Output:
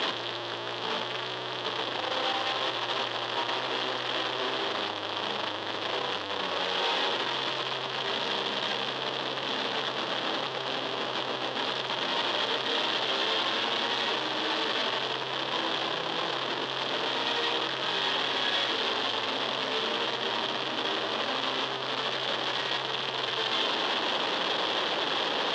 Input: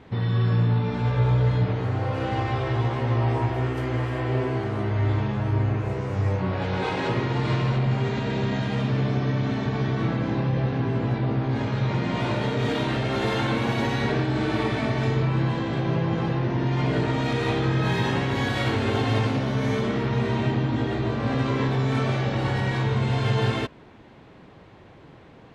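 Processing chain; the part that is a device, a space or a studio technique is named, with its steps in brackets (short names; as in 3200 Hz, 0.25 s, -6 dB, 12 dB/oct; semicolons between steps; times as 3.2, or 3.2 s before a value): home computer beeper (infinite clipping; speaker cabinet 560–4300 Hz, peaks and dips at 720 Hz -4 dB, 1400 Hz -4 dB, 2200 Hz -8 dB, 3300 Hz +8 dB)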